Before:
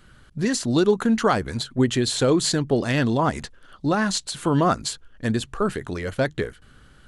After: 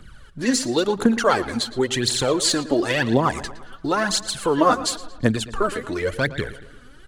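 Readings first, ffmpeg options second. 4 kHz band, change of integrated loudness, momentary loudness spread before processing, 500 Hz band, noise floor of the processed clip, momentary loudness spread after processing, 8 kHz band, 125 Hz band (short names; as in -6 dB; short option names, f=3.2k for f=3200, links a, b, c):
+4.0 dB, +1.5 dB, 10 LU, +1.0 dB, -45 dBFS, 8 LU, +3.5 dB, -3.5 dB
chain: -filter_complex "[0:a]acrossover=split=280|3000[a][b][c];[a]acompressor=threshold=-31dB:ratio=6[d];[d][b][c]amix=inputs=3:normalize=0,aphaser=in_gain=1:out_gain=1:delay=4.2:decay=0.69:speed=0.95:type=triangular,asplit=2[e][f];[f]adelay=114,lowpass=f=4.4k:p=1,volume=-15dB,asplit=2[g][h];[h]adelay=114,lowpass=f=4.4k:p=1,volume=0.53,asplit=2[i][j];[j]adelay=114,lowpass=f=4.4k:p=1,volume=0.53,asplit=2[k][l];[l]adelay=114,lowpass=f=4.4k:p=1,volume=0.53,asplit=2[m][n];[n]adelay=114,lowpass=f=4.4k:p=1,volume=0.53[o];[g][i][k][m][o]amix=inputs=5:normalize=0[p];[e][p]amix=inputs=2:normalize=0,volume=1dB"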